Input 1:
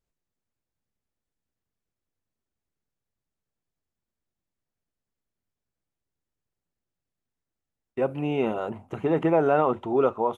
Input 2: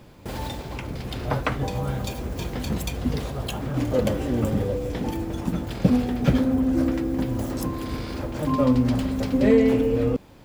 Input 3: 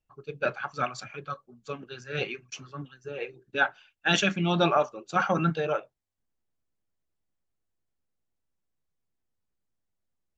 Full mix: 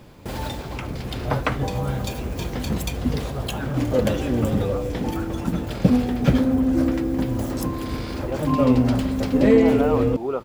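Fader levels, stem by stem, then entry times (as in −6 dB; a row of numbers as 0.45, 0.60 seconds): −4.5, +2.0, −14.5 decibels; 0.30, 0.00, 0.00 seconds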